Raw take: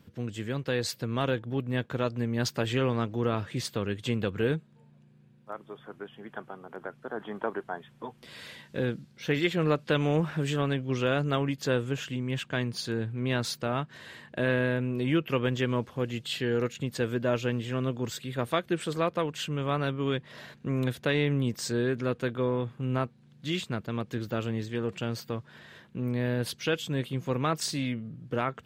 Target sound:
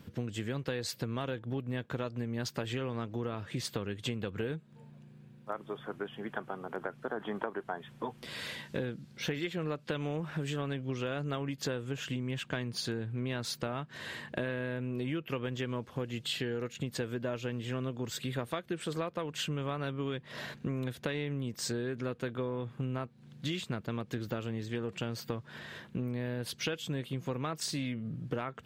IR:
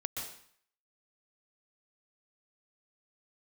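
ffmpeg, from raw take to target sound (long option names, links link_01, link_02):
-af "acompressor=threshold=-36dB:ratio=12,volume=4.5dB"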